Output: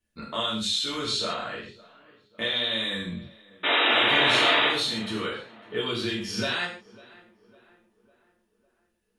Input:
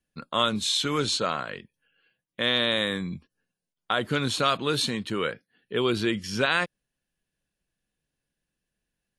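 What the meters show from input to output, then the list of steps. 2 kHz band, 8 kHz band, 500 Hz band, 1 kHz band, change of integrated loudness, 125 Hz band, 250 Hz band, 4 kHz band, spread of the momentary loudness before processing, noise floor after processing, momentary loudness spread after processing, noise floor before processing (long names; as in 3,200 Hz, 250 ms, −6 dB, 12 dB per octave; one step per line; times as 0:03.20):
+4.0 dB, −3.0 dB, −2.0 dB, +1.0 dB, +2.0 dB, −5.0 dB, −2.5 dB, +3.5 dB, 10 LU, −73 dBFS, 16 LU, below −85 dBFS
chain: dynamic equaliser 3,900 Hz, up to +7 dB, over −39 dBFS, Q 1.2
downward compressor 2.5 to 1, threshold −32 dBFS, peak gain reduction 12 dB
sound drawn into the spectrogram noise, 0:03.63–0:04.68, 240–3,900 Hz −25 dBFS
on a send: tape delay 552 ms, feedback 54%, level −20.5 dB, low-pass 2,000 Hz
on the sum: reverb whose tail is shaped and stops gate 190 ms falling, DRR −7 dB
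level −4 dB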